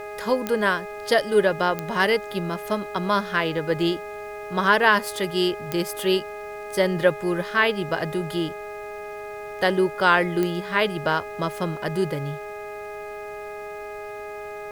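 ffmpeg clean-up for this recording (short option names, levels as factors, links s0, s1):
-af "adeclick=t=4,bandreject=f=414.8:t=h:w=4,bandreject=f=829.6:t=h:w=4,bandreject=f=1244.4:t=h:w=4,bandreject=f=1659.2:t=h:w=4,bandreject=f=2074:t=h:w=4,bandreject=f=2488.8:t=h:w=4,bandreject=f=630:w=30,agate=range=0.0891:threshold=0.0447"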